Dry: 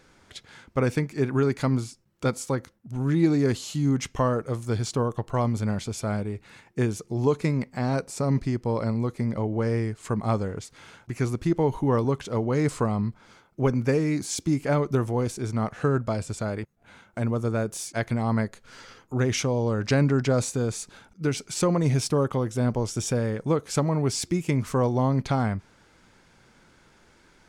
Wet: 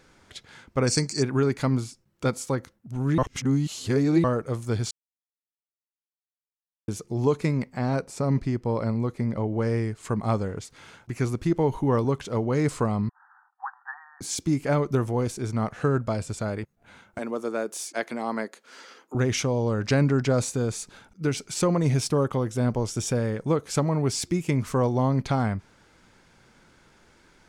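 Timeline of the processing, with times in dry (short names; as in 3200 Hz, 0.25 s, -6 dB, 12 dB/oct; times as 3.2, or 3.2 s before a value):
0.88–1.23 spectral gain 4100–9200 Hz +20 dB
3.18–4.24 reverse
4.91–6.88 mute
7.73–9.47 high shelf 4100 Hz -5 dB
13.09–14.21 brick-wall FIR band-pass 730–1900 Hz
17.18–19.15 HPF 260 Hz 24 dB/oct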